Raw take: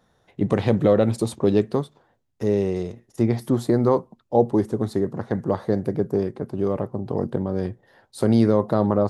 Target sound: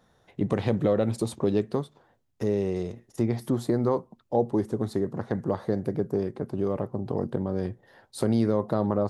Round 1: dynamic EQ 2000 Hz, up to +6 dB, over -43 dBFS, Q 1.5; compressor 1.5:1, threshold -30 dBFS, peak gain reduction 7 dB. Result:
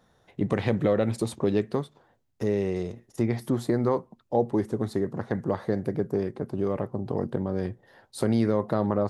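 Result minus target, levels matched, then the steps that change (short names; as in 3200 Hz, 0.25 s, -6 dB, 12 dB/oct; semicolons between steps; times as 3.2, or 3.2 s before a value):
2000 Hz band +4.0 dB
remove: dynamic EQ 2000 Hz, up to +6 dB, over -43 dBFS, Q 1.5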